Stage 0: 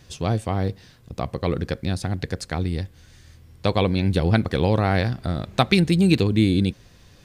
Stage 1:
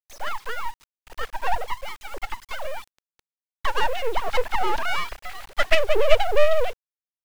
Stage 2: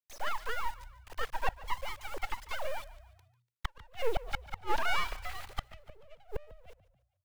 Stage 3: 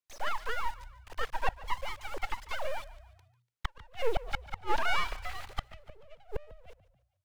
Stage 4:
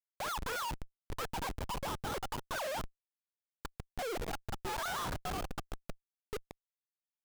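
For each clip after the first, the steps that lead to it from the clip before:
formants replaced by sine waves; full-wave rectifier; bit crusher 8-bit; trim +2 dB
inverted gate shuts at -12 dBFS, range -34 dB; frequency-shifting echo 145 ms, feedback 44%, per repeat +30 Hz, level -18 dB; trim -5 dB
treble shelf 11 kHz -8.5 dB; trim +1.5 dB
Chebyshev band-pass 300–1700 Hz, order 5; Schmitt trigger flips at -44.5 dBFS; trim +3.5 dB

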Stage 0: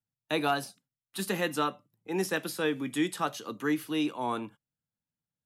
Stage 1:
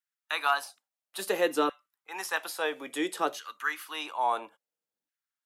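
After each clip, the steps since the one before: LFO high-pass saw down 0.59 Hz 340–1700 Hz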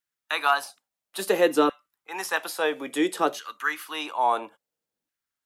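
bass shelf 460 Hz +6 dB; trim +3.5 dB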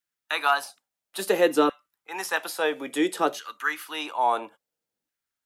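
band-stop 1.1 kHz, Q 20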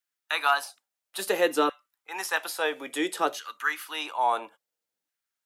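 bass shelf 380 Hz -9.5 dB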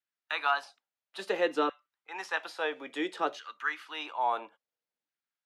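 band-pass 100–4100 Hz; trim -4.5 dB

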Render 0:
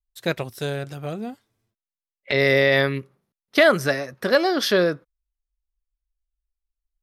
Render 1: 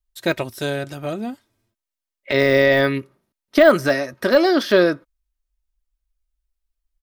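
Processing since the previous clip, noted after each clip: de-esser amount 70%; comb 3.2 ms, depth 41%; trim +4 dB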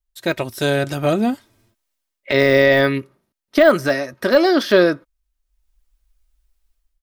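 level rider gain up to 13 dB; trim -1 dB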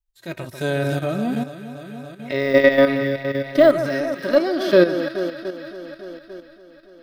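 echo whose repeats swap between lows and highs 142 ms, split 1.5 kHz, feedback 82%, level -8 dB; level held to a coarse grid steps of 12 dB; harmonic-percussive split percussive -13 dB; trim +3.5 dB

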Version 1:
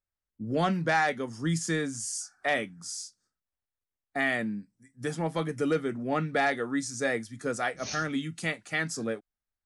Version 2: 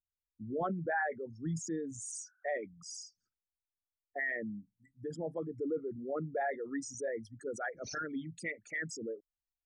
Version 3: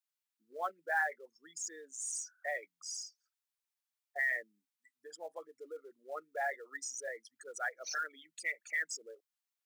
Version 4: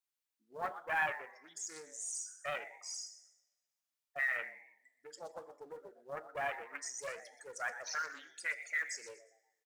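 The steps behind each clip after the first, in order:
resonances exaggerated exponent 3; trim -8 dB
Bessel high-pass 950 Hz, order 4; in parallel at -5 dB: short-mantissa float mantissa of 2-bit
frequency-shifting echo 121 ms, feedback 34%, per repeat +110 Hz, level -13 dB; two-slope reverb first 0.59 s, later 1.5 s, DRR 9.5 dB; loudspeaker Doppler distortion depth 0.25 ms; trim -1.5 dB

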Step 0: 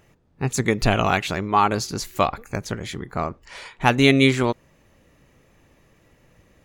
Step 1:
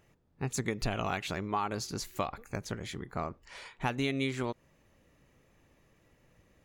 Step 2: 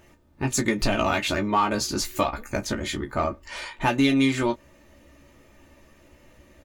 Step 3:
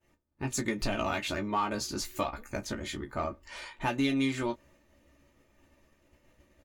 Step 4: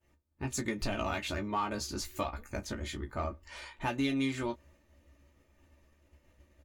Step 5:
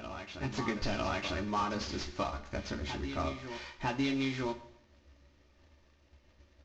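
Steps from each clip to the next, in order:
compression 4:1, threshold -20 dBFS, peak gain reduction 9.5 dB; trim -8.5 dB
comb 3.3 ms, depth 55%; in parallel at -4 dB: saturation -31 dBFS, distortion -9 dB; on the sum: early reflections 14 ms -5.5 dB, 30 ms -13.5 dB; trim +5.5 dB
expander -49 dBFS; trim -8 dB
peaking EQ 72 Hz +11 dB 0.48 oct; trim -3 dB
CVSD coder 32 kbps; reverse echo 952 ms -9 dB; Schroeder reverb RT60 0.73 s, combs from 31 ms, DRR 11.5 dB

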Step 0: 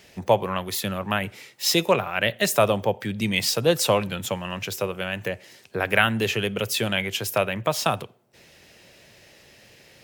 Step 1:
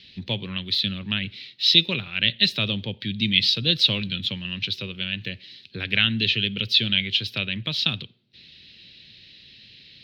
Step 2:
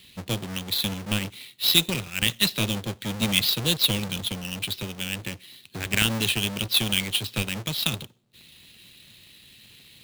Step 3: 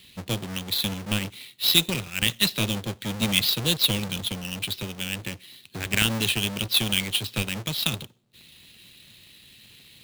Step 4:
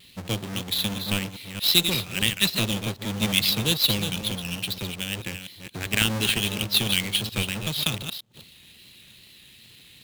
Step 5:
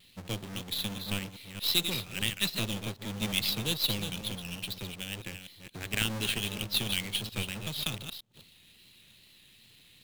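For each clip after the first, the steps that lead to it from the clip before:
FFT filter 250 Hz 0 dB, 720 Hz -22 dB, 1.1 kHz -18 dB, 4 kHz +14 dB, 7.3 kHz -25 dB
square wave that keeps the level; trim -5.5 dB
no audible change
chunks repeated in reverse 228 ms, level -8 dB; vibrato 2.4 Hz 58 cents
partial rectifier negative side -3 dB; trim -6.5 dB

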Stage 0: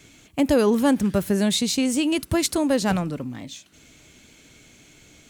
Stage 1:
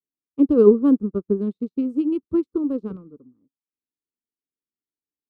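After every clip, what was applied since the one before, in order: local Wiener filter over 15 samples; FFT filter 140 Hz 0 dB, 220 Hz +8 dB, 450 Hz +12 dB, 710 Hz -17 dB, 1.2 kHz +4 dB, 1.8 kHz -21 dB, 2.6 kHz -13 dB, 4.4 kHz -16 dB, 6.9 kHz -26 dB, 14 kHz -19 dB; upward expansion 2.5:1, over -43 dBFS; trim -1 dB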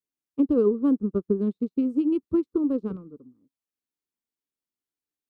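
compression 6:1, threshold -18 dBFS, peak gain reduction 11 dB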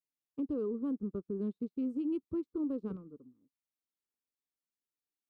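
peak limiter -21.5 dBFS, peak gain reduction 10 dB; trim -7 dB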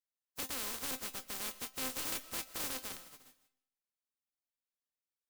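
spectral contrast reduction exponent 0.12; feedback comb 260 Hz, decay 0.17 s, harmonics all, mix 70%; reverberation RT60 0.50 s, pre-delay 90 ms, DRR 16 dB; trim +2.5 dB

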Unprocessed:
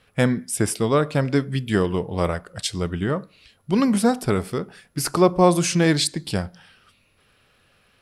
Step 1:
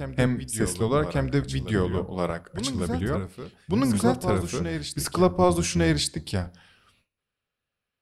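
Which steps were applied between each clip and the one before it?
octave divider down 1 oct, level -6 dB; gate with hold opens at -47 dBFS; reverse echo 1150 ms -8.5 dB; trim -4.5 dB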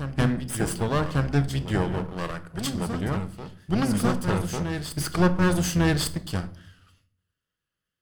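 comb filter that takes the minimum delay 0.63 ms; wow and flutter 29 cents; simulated room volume 750 m³, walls furnished, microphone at 0.63 m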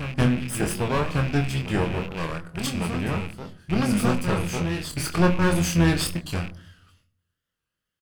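rattle on loud lows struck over -33 dBFS, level -26 dBFS; doubling 24 ms -5.5 dB; warped record 45 rpm, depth 100 cents

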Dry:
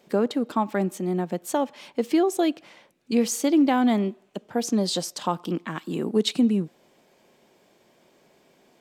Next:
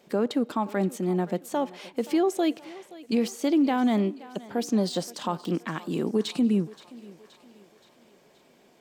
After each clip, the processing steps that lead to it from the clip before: de-esser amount 70%; peak limiter -16 dBFS, peak gain reduction 5 dB; thinning echo 524 ms, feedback 56%, high-pass 310 Hz, level -18 dB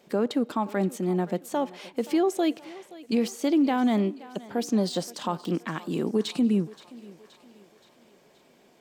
no audible change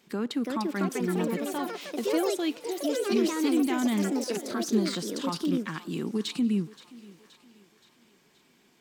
peaking EQ 590 Hz -14.5 dB 0.93 oct; ever faster or slower copies 362 ms, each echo +4 st, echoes 3; bass shelf 170 Hz -3.5 dB

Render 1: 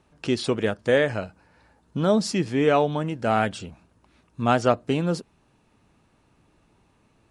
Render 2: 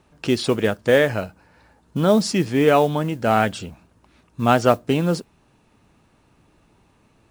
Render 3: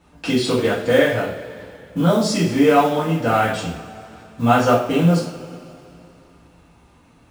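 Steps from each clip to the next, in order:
modulation noise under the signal 28 dB; trim +4 dB
in parallel at +1 dB: compression, threshold -26 dBFS, peak gain reduction 15.5 dB; on the sum: two-slope reverb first 0.46 s, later 2.8 s, from -18 dB, DRR -8.5 dB; trim -9.5 dB

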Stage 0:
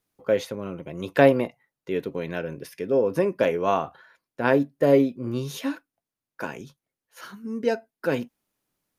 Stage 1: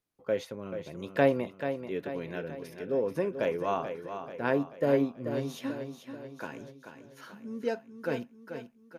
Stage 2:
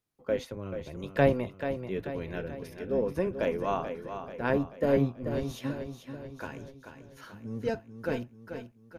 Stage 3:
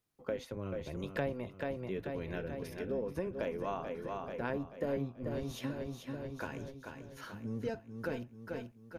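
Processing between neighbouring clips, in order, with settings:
treble shelf 7.7 kHz -4 dB; on a send: feedback delay 436 ms, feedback 51%, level -9 dB; on the sum: trim -7.5 dB
octave divider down 1 oct, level -2 dB
compression 3:1, threshold -37 dBFS, peak gain reduction 15 dB; trim +1 dB

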